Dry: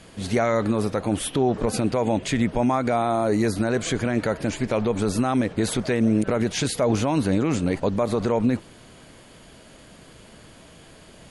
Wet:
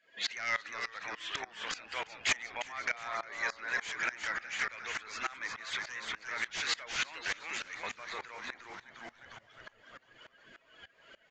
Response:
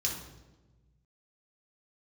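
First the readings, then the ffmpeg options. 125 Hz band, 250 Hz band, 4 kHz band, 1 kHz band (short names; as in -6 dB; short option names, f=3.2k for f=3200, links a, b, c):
-34.5 dB, -34.5 dB, -3.0 dB, -13.0 dB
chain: -filter_complex "[0:a]afftdn=nr=25:nf=-44,highshelf=f=5.3k:g=-9.5,acompressor=threshold=-33dB:ratio=12,aeval=exprs='val(0)+0.00316*(sin(2*PI*50*n/s)+sin(2*PI*2*50*n/s)/2+sin(2*PI*3*50*n/s)/3+sin(2*PI*4*50*n/s)/4+sin(2*PI*5*50*n/s)/5)':c=same,highpass=f=1.9k:t=q:w=2.7,aeval=exprs='0.0841*sin(PI/2*4.47*val(0)/0.0841)':c=same,asplit=9[a][b][c][d][e][f][g][h][i];[b]adelay=356,afreqshift=-120,volume=-7dB[j];[c]adelay=712,afreqshift=-240,volume=-11.2dB[k];[d]adelay=1068,afreqshift=-360,volume=-15.3dB[l];[e]adelay=1424,afreqshift=-480,volume=-19.5dB[m];[f]adelay=1780,afreqshift=-600,volume=-23.6dB[n];[g]adelay=2136,afreqshift=-720,volume=-27.8dB[o];[h]adelay=2492,afreqshift=-840,volume=-31.9dB[p];[i]adelay=2848,afreqshift=-960,volume=-36.1dB[q];[a][j][k][l][m][n][o][p][q]amix=inputs=9:normalize=0,aresample=16000,aresample=44100,aeval=exprs='val(0)*pow(10,-21*if(lt(mod(-3.4*n/s,1),2*abs(-3.4)/1000),1-mod(-3.4*n/s,1)/(2*abs(-3.4)/1000),(mod(-3.4*n/s,1)-2*abs(-3.4)/1000)/(1-2*abs(-3.4)/1000))/20)':c=same"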